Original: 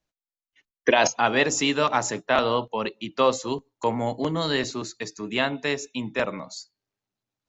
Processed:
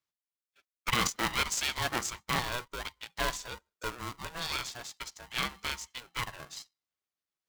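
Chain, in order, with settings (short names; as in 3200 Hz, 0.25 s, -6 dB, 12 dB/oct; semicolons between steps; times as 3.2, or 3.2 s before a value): HPF 570 Hz 24 dB/oct; dynamic EQ 850 Hz, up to -5 dB, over -35 dBFS, Q 1; polarity switched at an audio rate 490 Hz; gain -5.5 dB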